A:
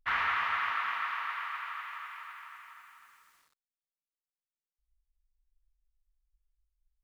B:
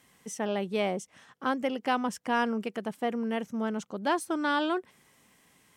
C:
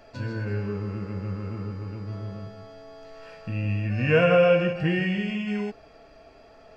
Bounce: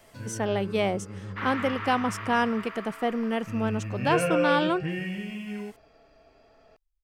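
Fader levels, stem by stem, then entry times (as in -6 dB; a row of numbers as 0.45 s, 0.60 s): -5.0 dB, +3.0 dB, -7.0 dB; 1.30 s, 0.00 s, 0.00 s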